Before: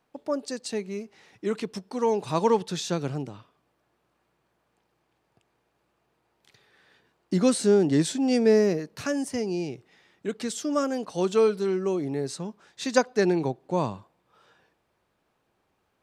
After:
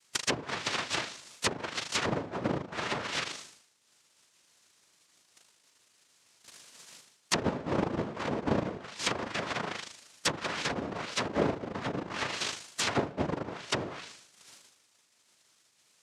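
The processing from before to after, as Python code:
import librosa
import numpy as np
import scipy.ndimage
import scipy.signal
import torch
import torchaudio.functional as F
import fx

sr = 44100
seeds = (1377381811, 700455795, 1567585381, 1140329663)

p1 = fx.pitch_ramps(x, sr, semitones=6.5, every_ms=224)
p2 = fx.tilt_eq(p1, sr, slope=1.5)
p3 = p2 + fx.room_flutter(p2, sr, wall_m=6.6, rt60_s=0.78, dry=0)
p4 = fx.transient(p3, sr, attack_db=6, sustain_db=-10)
p5 = fx.rider(p4, sr, range_db=3, speed_s=2.0)
p6 = p4 + F.gain(torch.from_numpy(p5), 3.0).numpy()
p7 = fx.noise_vocoder(p6, sr, seeds[0], bands=1)
p8 = fx.env_lowpass_down(p7, sr, base_hz=540.0, full_db=-12.5)
p9 = fx.high_shelf(p8, sr, hz=4000.0, db=6.5)
p10 = fx.notch(p9, sr, hz=780.0, q=20.0)
y = F.gain(torch.from_numpy(p10), -7.5).numpy()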